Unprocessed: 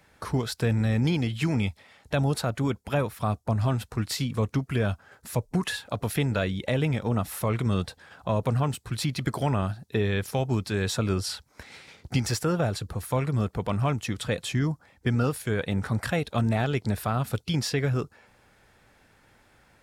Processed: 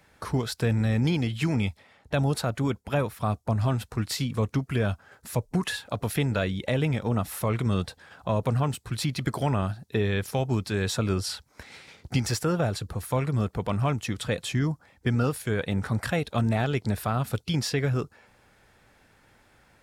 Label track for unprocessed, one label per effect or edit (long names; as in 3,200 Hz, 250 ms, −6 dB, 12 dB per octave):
1.560000	3.270000	one half of a high-frequency compander decoder only